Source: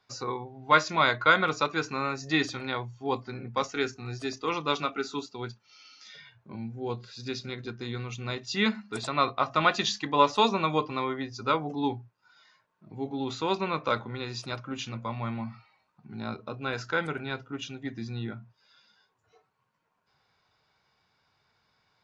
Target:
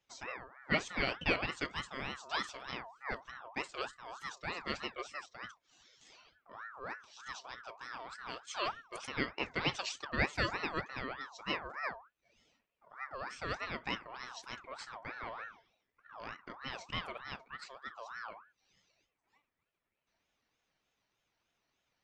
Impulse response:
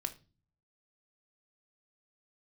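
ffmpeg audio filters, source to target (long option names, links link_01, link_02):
-af "aeval=exprs='val(0)*sin(2*PI*1200*n/s+1200*0.35/3.3*sin(2*PI*3.3*n/s))':channel_layout=same,volume=-8dB"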